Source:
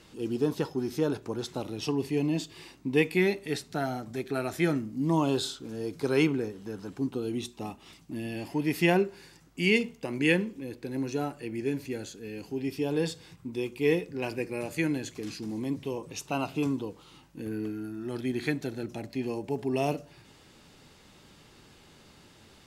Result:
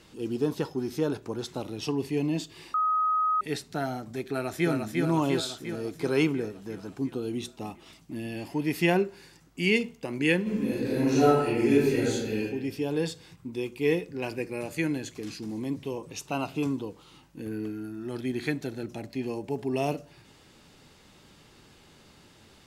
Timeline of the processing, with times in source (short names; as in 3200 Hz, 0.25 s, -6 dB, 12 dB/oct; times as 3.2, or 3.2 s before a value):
2.74–3.41 bleep 1260 Hz -22 dBFS
4.23–4.7 echo throw 0.35 s, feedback 65%, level -3 dB
10.42–12.38 reverb throw, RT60 1.1 s, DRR -10 dB